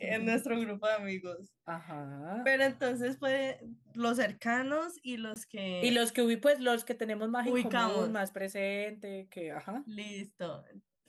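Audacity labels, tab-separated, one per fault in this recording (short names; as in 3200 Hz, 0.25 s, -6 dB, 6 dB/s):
5.340000	5.360000	gap 19 ms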